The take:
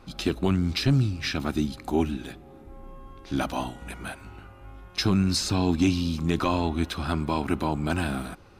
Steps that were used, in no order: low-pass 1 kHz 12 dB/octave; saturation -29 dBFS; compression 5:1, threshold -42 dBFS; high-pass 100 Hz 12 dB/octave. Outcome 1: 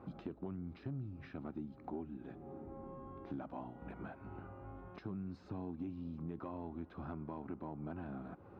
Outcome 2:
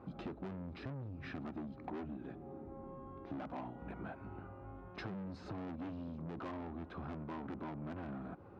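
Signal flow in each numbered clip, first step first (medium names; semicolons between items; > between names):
high-pass > compression > low-pass > saturation; low-pass > saturation > high-pass > compression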